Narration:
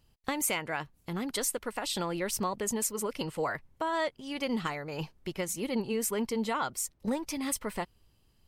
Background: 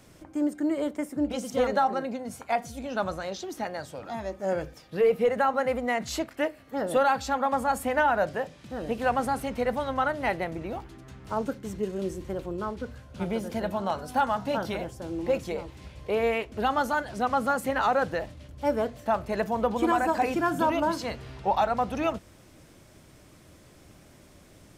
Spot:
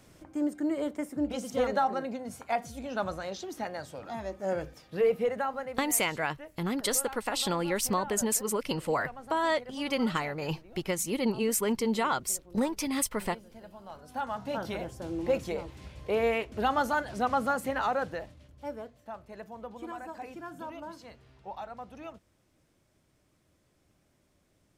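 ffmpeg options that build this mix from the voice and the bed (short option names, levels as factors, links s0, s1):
-filter_complex "[0:a]adelay=5500,volume=1.41[s0];[1:a]volume=5.31,afade=t=out:st=5.06:d=0.82:silence=0.158489,afade=t=in:st=13.85:d=1.18:silence=0.133352,afade=t=out:st=17.23:d=1.68:silence=0.177828[s1];[s0][s1]amix=inputs=2:normalize=0"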